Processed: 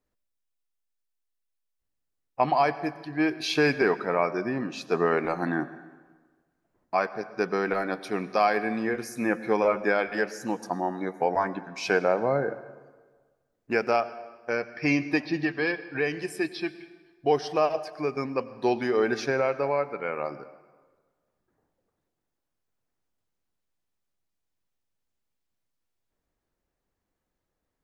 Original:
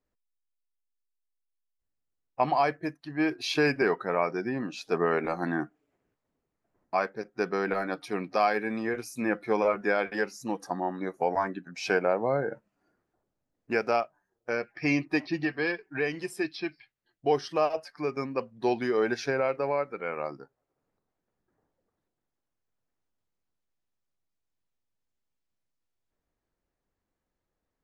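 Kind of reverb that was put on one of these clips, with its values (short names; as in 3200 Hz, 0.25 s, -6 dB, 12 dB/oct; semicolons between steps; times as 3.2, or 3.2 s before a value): plate-style reverb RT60 1.4 s, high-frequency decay 0.75×, pre-delay 80 ms, DRR 15 dB; gain +2 dB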